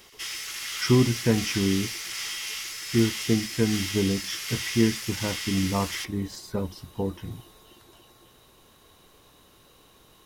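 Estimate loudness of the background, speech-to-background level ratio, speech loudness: -31.5 LUFS, 4.5 dB, -27.0 LUFS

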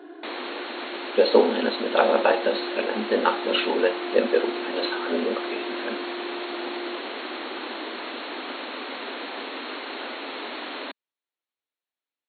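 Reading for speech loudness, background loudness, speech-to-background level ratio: -24.0 LUFS, -33.5 LUFS, 9.5 dB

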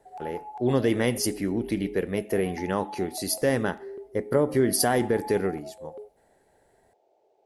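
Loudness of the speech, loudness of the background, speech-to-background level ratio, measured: -26.5 LUFS, -42.0 LUFS, 15.5 dB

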